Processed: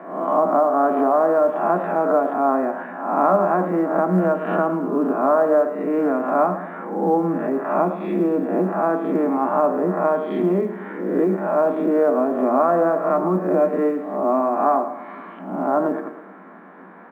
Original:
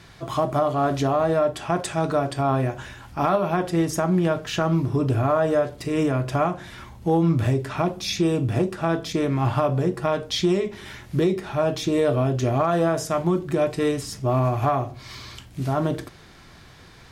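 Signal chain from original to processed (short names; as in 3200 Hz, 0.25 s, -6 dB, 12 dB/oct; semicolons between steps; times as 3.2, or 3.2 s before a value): spectral swells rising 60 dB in 0.69 s; inverse Chebyshev low-pass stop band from 5200 Hz, stop band 60 dB; in parallel at +2.5 dB: compressor 20:1, threshold -27 dBFS, peak gain reduction 13 dB; on the sum: rippled Chebyshev high-pass 180 Hz, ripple 3 dB; short-mantissa float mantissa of 6-bit; on a send: feedback echo 0.108 s, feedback 50%, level -12 dB; on the sum: gain +1 dB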